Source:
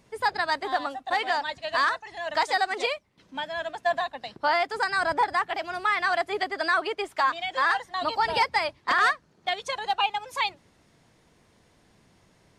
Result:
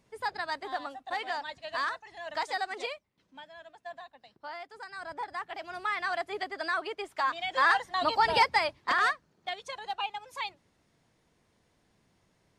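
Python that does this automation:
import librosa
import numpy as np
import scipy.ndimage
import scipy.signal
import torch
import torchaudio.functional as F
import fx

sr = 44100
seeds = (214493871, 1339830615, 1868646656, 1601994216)

y = fx.gain(x, sr, db=fx.line((2.8, -8.0), (3.61, -18.0), (4.84, -18.0), (5.78, -7.0), (7.12, -7.0), (7.66, 0.0), (8.43, 0.0), (9.63, -9.0)))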